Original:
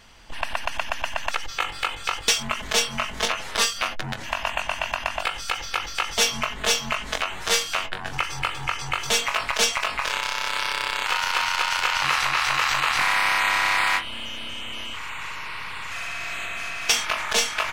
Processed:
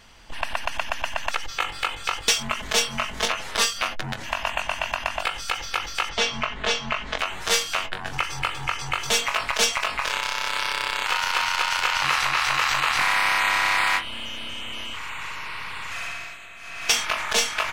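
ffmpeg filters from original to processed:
-filter_complex "[0:a]asettb=1/sr,asplit=3[a][b][c];[a]atrim=end=6.094[d];[b]atrim=start=6.09:end=7.19,asetpts=PTS-STARTPTS,afade=t=in:d=0.004:c=qsin,afade=t=out:st=1.096:d=0.004:c=qsin,lowpass=4k[e];[c]atrim=start=7.186[f];[d][e]acrossfade=d=0.004:c1=hsin:c2=qsin[g];[g][f]acrossfade=d=0.004:c1=qsin:c2=hsin,asplit=3[h][i][j];[h]atrim=end=16.38,asetpts=PTS-STARTPTS,afade=t=out:st=16.07:d=0.31:silence=0.266073[k];[i]atrim=start=16.38:end=16.6,asetpts=PTS-STARTPTS,volume=-11.5dB[l];[j]atrim=start=16.6,asetpts=PTS-STARTPTS,afade=t=in:d=0.31:silence=0.266073[m];[k][l][m]concat=n=3:v=0:a=1"

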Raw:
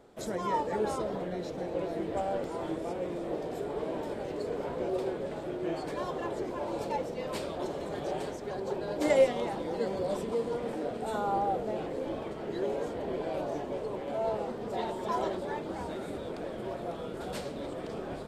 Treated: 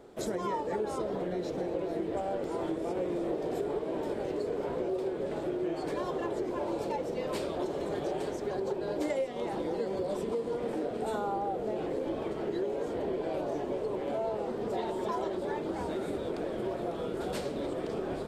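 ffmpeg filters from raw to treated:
-filter_complex "[0:a]asplit=3[a][b][c];[a]atrim=end=2.972[d];[b]atrim=start=2.968:end=3.792,asetpts=PTS-STARTPTS,volume=3.5dB[e];[c]atrim=start=3.788[f];[d][e]acrossfade=d=0.004:c1=hsin:c2=hsin[g];[g][f]acrossfade=d=0.004:c1=hsin:c2=hsin,equalizer=f=370:w=2.1:g=5,acompressor=threshold=-32dB:ratio=6,volume=2.5dB"

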